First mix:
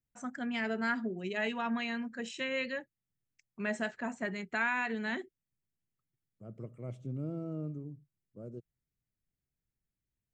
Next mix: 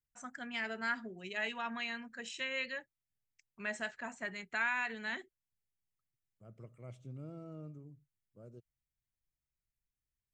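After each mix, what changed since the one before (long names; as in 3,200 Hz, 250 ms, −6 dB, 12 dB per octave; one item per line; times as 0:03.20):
master: add parametric band 260 Hz −11 dB 2.9 octaves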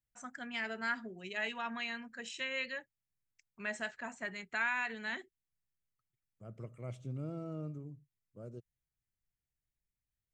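second voice +6.0 dB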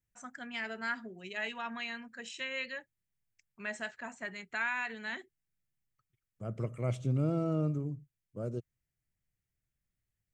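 second voice +10.5 dB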